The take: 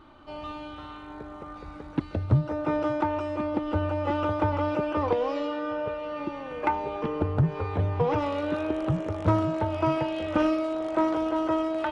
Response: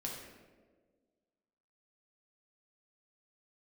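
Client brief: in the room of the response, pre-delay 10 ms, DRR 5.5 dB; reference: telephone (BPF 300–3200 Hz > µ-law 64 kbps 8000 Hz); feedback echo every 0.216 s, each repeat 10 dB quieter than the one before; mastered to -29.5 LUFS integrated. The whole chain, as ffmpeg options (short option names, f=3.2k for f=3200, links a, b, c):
-filter_complex "[0:a]aecho=1:1:216|432|648|864:0.316|0.101|0.0324|0.0104,asplit=2[a][b];[1:a]atrim=start_sample=2205,adelay=10[c];[b][c]afir=irnorm=-1:irlink=0,volume=-5.5dB[d];[a][d]amix=inputs=2:normalize=0,highpass=300,lowpass=3.2k,volume=-2dB" -ar 8000 -c:a pcm_mulaw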